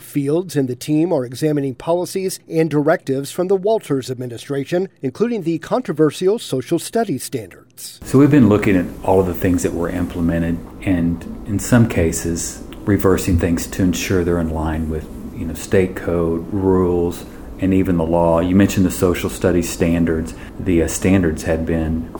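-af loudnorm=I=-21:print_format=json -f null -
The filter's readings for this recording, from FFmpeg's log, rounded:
"input_i" : "-18.2",
"input_tp" : "-2.6",
"input_lra" : "3.4",
"input_thresh" : "-28.3",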